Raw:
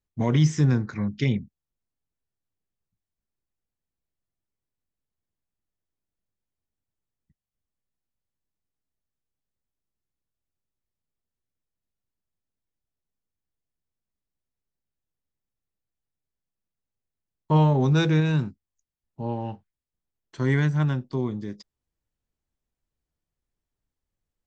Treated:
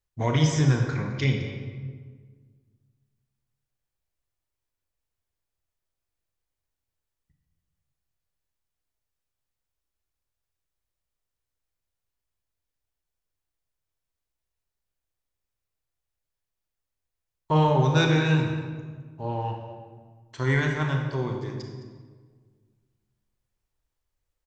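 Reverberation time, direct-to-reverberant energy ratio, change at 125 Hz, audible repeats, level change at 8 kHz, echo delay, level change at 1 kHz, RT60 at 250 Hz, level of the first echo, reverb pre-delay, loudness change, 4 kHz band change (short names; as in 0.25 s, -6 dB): 1.6 s, 2.0 dB, -1.0 dB, 1, n/a, 0.212 s, +3.5 dB, 2.0 s, -15.5 dB, 27 ms, -1.5 dB, +4.0 dB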